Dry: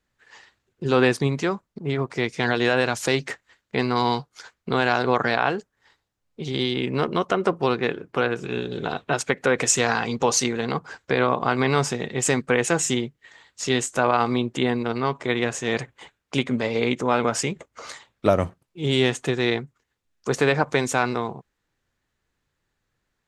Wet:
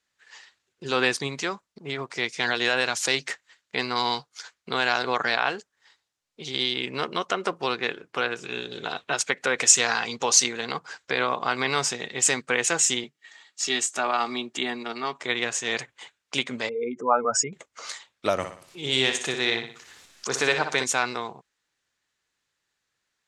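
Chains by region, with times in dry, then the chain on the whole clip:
13.04–15.21 HPF 160 Hz 24 dB/oct + notch comb 510 Hz
16.69–17.53 spectral contrast raised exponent 2.6 + bell 1100 Hz +10 dB 1.3 oct
18.37–20.84 upward compressor, threshold -25 dBFS + flutter echo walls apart 10.4 m, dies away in 0.47 s
whole clip: LPF 7400 Hz 12 dB/oct; tilt +3.5 dB/oct; gain -3 dB

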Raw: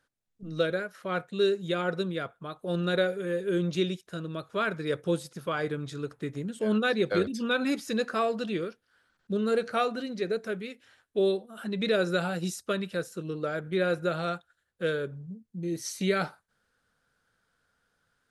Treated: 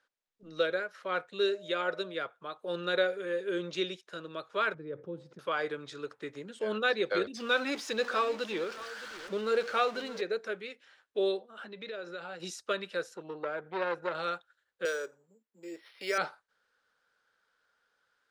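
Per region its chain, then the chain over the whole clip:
1.47–2.13 low shelf 180 Hz -5 dB + whine 610 Hz -46 dBFS
4.74–5.39 band-pass 150 Hz, Q 1.1 + fast leveller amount 50%
7.37–10.21 zero-crossing step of -37.5 dBFS + echo 0.618 s -16 dB
11.39–12.4 air absorption 71 m + compressor 5:1, threshold -35 dBFS
13.14–14.15 high shelf 2500 Hz -10.5 dB + core saturation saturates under 1000 Hz
14.85–16.18 HPF 400 Hz + careless resampling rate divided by 6×, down filtered, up hold
whole clip: three-band isolator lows -18 dB, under 370 Hz, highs -16 dB, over 6900 Hz; notch 690 Hz, Q 12

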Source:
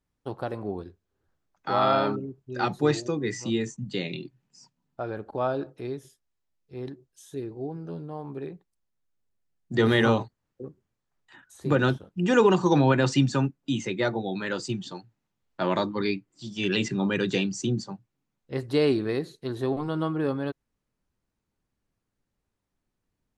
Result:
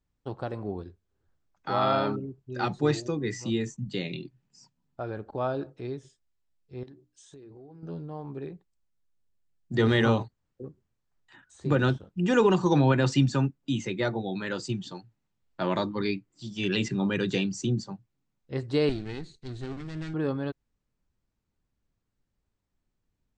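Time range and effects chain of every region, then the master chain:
6.83–7.83 low shelf 160 Hz -5.5 dB + notches 60/120/180/240/300 Hz + compressor 12:1, threshold -43 dBFS
18.89–20.14 minimum comb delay 0.45 ms + bell 650 Hz -11.5 dB 2.3 oct
whole clip: elliptic low-pass 8200 Hz, stop band 40 dB; low shelf 130 Hz +7.5 dB; gain -2 dB

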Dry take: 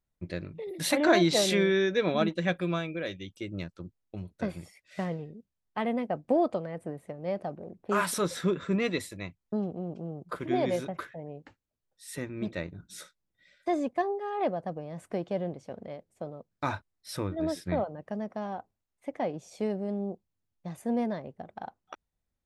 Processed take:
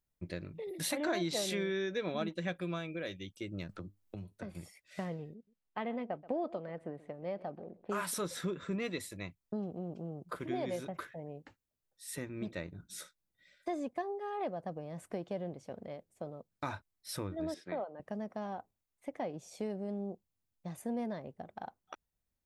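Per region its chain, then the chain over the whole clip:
3.69–4.55 resonator 100 Hz, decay 0.19 s, mix 50% + three-band squash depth 100%
5.34–7.9 LPF 4000 Hz + bell 70 Hz -8 dB 2 oct + echo 0.129 s -20 dB
17.54–18 BPF 330–6000 Hz + high shelf 4700 Hz -8 dB
whole clip: high shelf 8800 Hz +7 dB; compressor 2:1, threshold -33 dBFS; gain -3.5 dB

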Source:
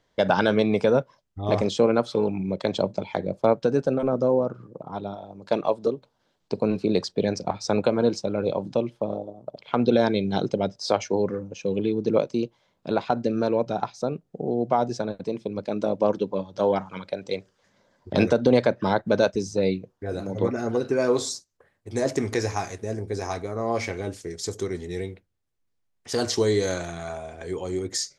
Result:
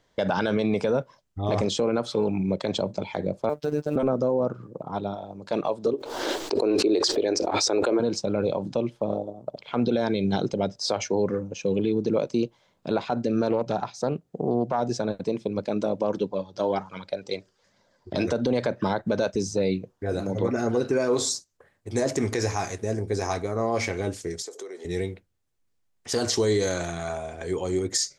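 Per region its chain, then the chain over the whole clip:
3.49–3.96 G.711 law mismatch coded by A + robotiser 149 Hz
5.93–8 resonant low shelf 240 Hz -11.5 dB, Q 3 + backwards sustainer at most 43 dB/s
13.5–14.8 HPF 41 Hz + Doppler distortion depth 0.16 ms
16.27–18.28 bell 4800 Hz +5 dB 0.48 oct + flange 1.3 Hz, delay 1 ms, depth 2.3 ms, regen +62%
24.42–24.85 HPF 430 Hz 24 dB/oct + tilt shelf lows +4.5 dB, about 670 Hz + compressor 4:1, threshold -38 dBFS
whole clip: limiter -17 dBFS; bell 7400 Hz +2.5 dB 0.64 oct; gain +2.5 dB

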